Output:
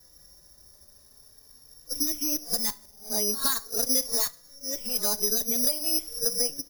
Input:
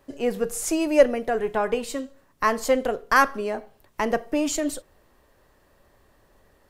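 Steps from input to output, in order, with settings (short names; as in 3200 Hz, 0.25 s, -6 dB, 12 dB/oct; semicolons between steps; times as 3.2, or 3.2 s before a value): whole clip reversed; tone controls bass +7 dB, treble +7 dB; compressor 10:1, threshold -24 dBFS, peak gain reduction 15.5 dB; two-slope reverb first 0.37 s, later 1.7 s, from -21 dB, DRR 12.5 dB; careless resampling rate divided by 8×, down filtered, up zero stuff; endless flanger 3.7 ms +0.46 Hz; gain -5 dB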